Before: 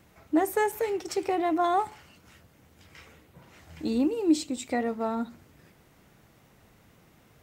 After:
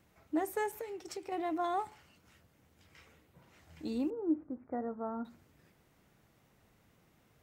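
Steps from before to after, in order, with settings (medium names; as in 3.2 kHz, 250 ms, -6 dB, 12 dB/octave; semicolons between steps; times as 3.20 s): 0.80–1.32 s: compression, threshold -30 dBFS, peak gain reduction 7.5 dB; 4.10–5.25 s: steep low-pass 1.6 kHz 48 dB/octave; trim -9 dB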